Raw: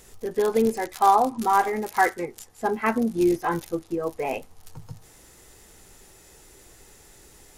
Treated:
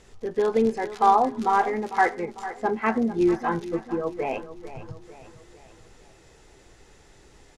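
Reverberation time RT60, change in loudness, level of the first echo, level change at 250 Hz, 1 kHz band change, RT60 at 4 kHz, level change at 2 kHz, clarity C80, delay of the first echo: none, -0.5 dB, -14.0 dB, 0.0 dB, -0.5 dB, none, -0.5 dB, none, 0.449 s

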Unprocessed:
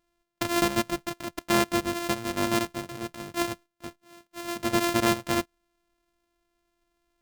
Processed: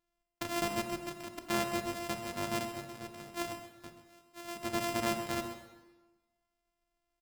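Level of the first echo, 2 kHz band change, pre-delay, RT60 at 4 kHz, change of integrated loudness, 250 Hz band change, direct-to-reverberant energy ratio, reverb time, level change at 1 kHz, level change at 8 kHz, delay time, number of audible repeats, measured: -13.5 dB, -8.5 dB, 30 ms, 1.0 s, -9.0 dB, -10.0 dB, 6.0 dB, 1.2 s, -7.5 dB, -8.0 dB, 0.131 s, 1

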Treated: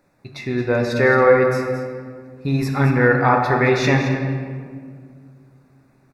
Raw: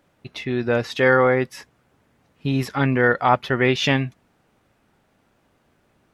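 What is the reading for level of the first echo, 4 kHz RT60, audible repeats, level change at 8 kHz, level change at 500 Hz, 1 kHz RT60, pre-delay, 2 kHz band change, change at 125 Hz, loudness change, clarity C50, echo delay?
-11.0 dB, 1.0 s, 1, +1.0 dB, +4.0 dB, 1.8 s, 5 ms, +2.0 dB, +5.0 dB, +2.5 dB, 3.5 dB, 0.22 s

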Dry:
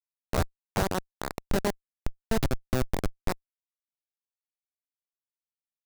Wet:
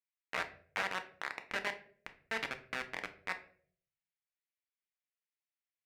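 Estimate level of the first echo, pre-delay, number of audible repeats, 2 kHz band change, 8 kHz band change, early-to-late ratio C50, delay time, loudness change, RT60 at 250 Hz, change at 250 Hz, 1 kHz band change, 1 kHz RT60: none, 3 ms, none, +2.0 dB, -13.5 dB, 13.0 dB, none, -7.5 dB, 0.75 s, -20.5 dB, -7.0 dB, 0.40 s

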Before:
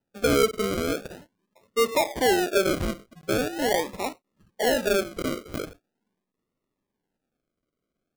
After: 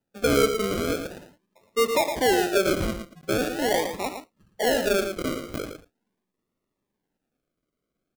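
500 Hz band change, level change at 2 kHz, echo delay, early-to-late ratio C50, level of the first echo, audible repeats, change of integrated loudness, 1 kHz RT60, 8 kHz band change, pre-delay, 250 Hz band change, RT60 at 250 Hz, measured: +0.5 dB, +0.5 dB, 0.113 s, none, -8.0 dB, 1, +0.5 dB, none, +0.5 dB, none, +0.5 dB, none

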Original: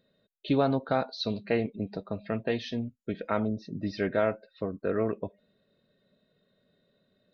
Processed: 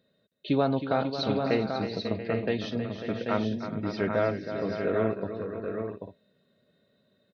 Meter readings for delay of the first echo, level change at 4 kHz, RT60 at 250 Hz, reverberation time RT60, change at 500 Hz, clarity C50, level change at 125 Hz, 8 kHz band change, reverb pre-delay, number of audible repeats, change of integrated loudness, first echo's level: 0.317 s, +2.0 dB, none, none, +2.0 dB, none, +2.0 dB, n/a, none, 6, +1.5 dB, -10.0 dB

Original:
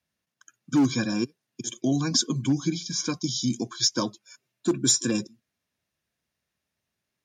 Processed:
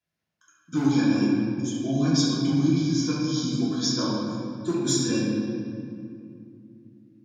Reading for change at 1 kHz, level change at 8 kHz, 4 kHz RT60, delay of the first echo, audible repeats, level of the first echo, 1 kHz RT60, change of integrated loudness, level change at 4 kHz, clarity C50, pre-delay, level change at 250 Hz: +1.5 dB, -5.0 dB, 1.5 s, none, none, none, 2.2 s, +1.0 dB, -2.0 dB, -1.5 dB, 3 ms, +4.0 dB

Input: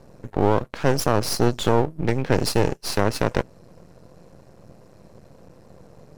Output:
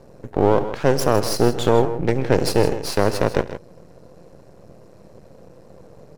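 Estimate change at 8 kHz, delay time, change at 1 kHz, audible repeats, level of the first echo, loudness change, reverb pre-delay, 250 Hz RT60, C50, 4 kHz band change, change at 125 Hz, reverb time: +0.5 dB, 71 ms, +2.0 dB, 3, -19.0 dB, +2.5 dB, none, none, none, +0.5 dB, +0.5 dB, none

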